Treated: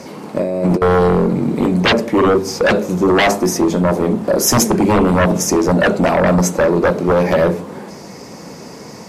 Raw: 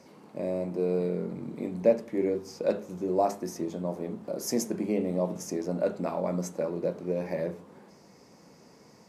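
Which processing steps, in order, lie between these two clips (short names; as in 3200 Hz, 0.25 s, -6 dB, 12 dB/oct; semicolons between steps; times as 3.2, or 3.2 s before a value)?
0.39–0.82 negative-ratio compressor -35 dBFS, ratio -0.5; sine folder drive 16 dB, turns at -10 dBFS; gain +2 dB; MP3 64 kbps 44100 Hz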